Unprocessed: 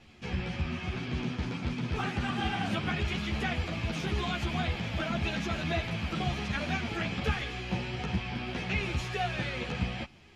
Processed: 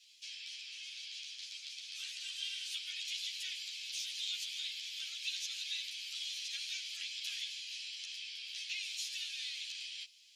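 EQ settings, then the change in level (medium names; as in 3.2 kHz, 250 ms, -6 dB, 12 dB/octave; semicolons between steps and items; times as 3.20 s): inverse Chebyshev high-pass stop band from 830 Hz, stop band 70 dB; +6.5 dB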